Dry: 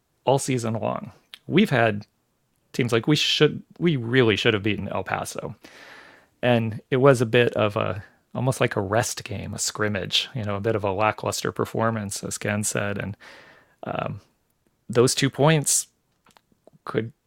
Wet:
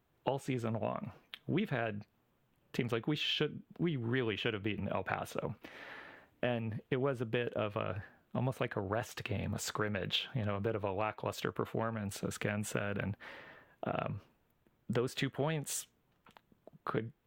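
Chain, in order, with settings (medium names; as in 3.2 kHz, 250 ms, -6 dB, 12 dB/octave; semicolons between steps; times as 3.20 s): high-order bell 7.1 kHz -11.5 dB; compression 6:1, threshold -27 dBFS, peak gain reduction 16.5 dB; trim -4 dB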